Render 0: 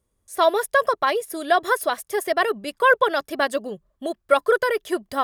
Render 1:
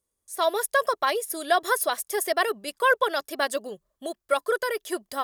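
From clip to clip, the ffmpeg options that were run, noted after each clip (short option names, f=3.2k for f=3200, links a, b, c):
-af "bass=f=250:g=-8,treble=f=4k:g=8,dynaudnorm=f=180:g=5:m=11.5dB,volume=-8.5dB"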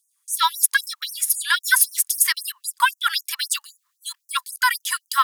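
-af "alimiter=level_in=14dB:limit=-1dB:release=50:level=0:latency=1,afftfilt=real='re*gte(b*sr/1024,840*pow(5800/840,0.5+0.5*sin(2*PI*3.8*pts/sr)))':imag='im*gte(b*sr/1024,840*pow(5800/840,0.5+0.5*sin(2*PI*3.8*pts/sr)))':win_size=1024:overlap=0.75,volume=-1dB"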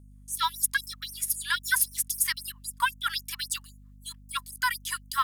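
-filter_complex "[0:a]acrossover=split=2400|4100|5400[a][b][c][d];[c]aeval=exprs='val(0)*gte(abs(val(0)),0.00447)':c=same[e];[a][b][e][d]amix=inputs=4:normalize=0,aeval=exprs='val(0)+0.00794*(sin(2*PI*50*n/s)+sin(2*PI*2*50*n/s)/2+sin(2*PI*3*50*n/s)/3+sin(2*PI*4*50*n/s)/4+sin(2*PI*5*50*n/s)/5)':c=same,volume=-8dB"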